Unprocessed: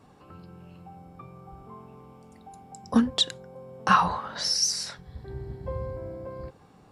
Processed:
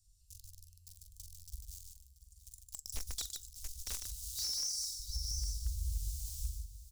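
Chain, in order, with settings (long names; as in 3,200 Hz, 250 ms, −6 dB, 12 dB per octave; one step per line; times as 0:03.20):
in parallel at −6 dB: log-companded quantiser 2 bits
on the sum: inverse Chebyshev band-stop filter 270–1,300 Hz, stop band 80 dB
parametric band 2,000 Hz −5 dB 0.53 octaves
single-tap delay 684 ms −15.5 dB
soft clipping −11 dBFS, distortion −25 dB
downward compressor 10 to 1, threshold −38 dBFS, peak gain reduction 16.5 dB
flanger 0.34 Hz, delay 5.8 ms, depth 6.4 ms, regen +84%
on a send: loudspeakers that aren't time-aligned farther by 15 metres −7 dB, 51 metres −5 dB
on the sum: wave folding −36 dBFS
high-shelf EQ 4,400 Hz −4.5 dB
level +9.5 dB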